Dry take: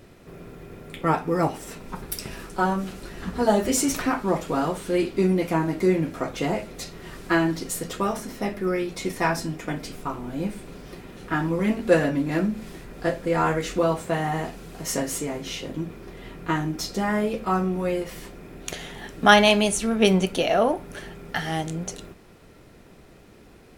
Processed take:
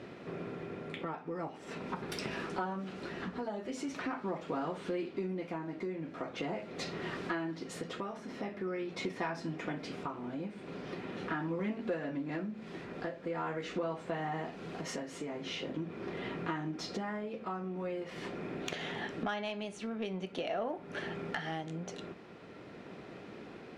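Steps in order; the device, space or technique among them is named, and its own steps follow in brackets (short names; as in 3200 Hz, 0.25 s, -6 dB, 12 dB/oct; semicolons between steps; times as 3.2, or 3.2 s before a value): AM radio (BPF 160–3600 Hz; compressor 5:1, threshold -38 dBFS, peak gain reduction 24.5 dB; soft clip -25.5 dBFS, distortion -26 dB; tremolo 0.43 Hz, depth 35%); gain +4 dB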